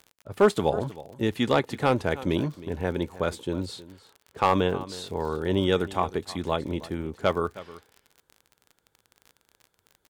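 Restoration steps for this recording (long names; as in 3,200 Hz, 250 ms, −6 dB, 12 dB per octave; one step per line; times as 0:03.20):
clipped peaks rebuilt −10.5 dBFS
click removal
echo removal 315 ms −17.5 dB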